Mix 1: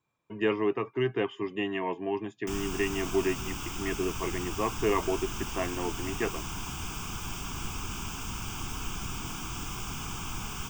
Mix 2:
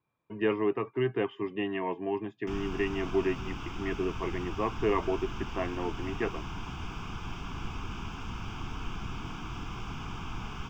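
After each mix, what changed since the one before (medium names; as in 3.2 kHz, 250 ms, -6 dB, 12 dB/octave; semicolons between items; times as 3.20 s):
master: add distance through air 230 m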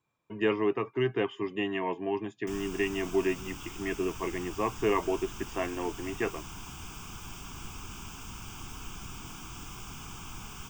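background -6.5 dB; master: remove distance through air 230 m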